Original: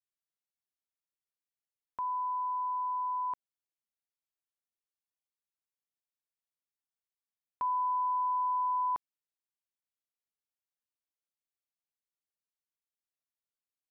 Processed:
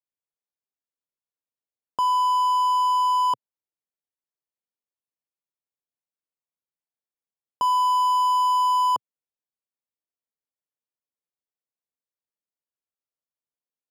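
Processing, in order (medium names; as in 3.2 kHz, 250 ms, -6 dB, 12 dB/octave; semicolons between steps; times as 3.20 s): waveshaping leveller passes 5; graphic EQ 125/250/500/1000 Hz +8/+7/+10/+6 dB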